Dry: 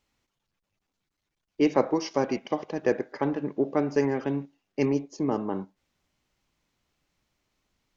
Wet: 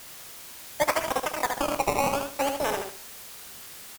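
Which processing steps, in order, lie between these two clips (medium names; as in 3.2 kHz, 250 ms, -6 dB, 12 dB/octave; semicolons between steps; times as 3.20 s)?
rattle on loud lows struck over -37 dBFS, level -23 dBFS; in parallel at +0.5 dB: level held to a coarse grid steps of 9 dB; on the sum: decimation with a swept rate 37×, swing 100% 0.33 Hz; peaking EQ 2 kHz -8.5 dB 0.38 oct; word length cut 6-bit, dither triangular; on a send: feedback delay 151 ms, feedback 26%, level -5 dB; on the sum: speed mistake 7.5 ips tape played at 15 ips; crackling interface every 0.32 s, samples 1024, repeat, from 0.74 s; trim -5.5 dB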